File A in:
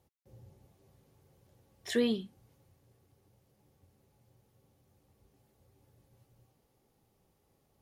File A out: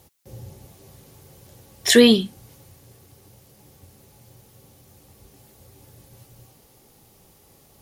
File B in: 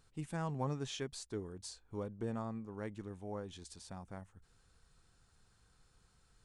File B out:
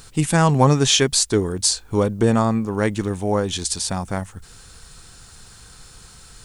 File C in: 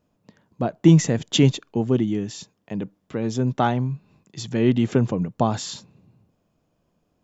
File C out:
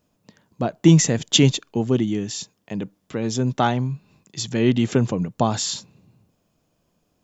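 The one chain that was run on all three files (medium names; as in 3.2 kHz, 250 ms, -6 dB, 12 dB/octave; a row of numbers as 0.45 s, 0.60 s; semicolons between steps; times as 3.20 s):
treble shelf 3 kHz +9 dB; peak normalisation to -2 dBFS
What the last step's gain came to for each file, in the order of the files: +16.0 dB, +22.5 dB, +0.5 dB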